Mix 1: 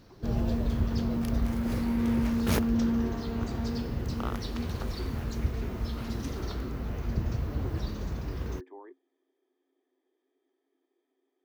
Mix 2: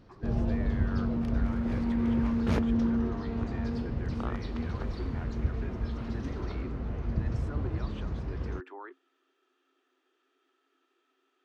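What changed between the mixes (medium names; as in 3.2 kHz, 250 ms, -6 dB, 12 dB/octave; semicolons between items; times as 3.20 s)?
speech: remove boxcar filter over 32 samples; master: add tape spacing loss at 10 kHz 21 dB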